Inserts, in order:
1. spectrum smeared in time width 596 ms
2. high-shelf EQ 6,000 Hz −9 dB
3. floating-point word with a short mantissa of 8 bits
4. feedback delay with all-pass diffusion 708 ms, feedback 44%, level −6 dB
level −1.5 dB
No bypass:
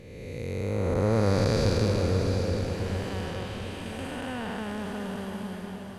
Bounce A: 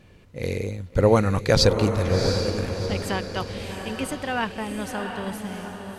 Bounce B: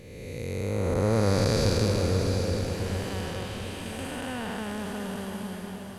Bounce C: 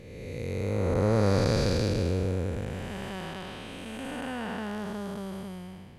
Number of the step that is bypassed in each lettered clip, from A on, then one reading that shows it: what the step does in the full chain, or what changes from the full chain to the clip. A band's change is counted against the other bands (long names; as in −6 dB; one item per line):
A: 1, 125 Hz band −4.5 dB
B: 2, 8 kHz band +5.0 dB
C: 4, echo-to-direct ratio −5.0 dB to none audible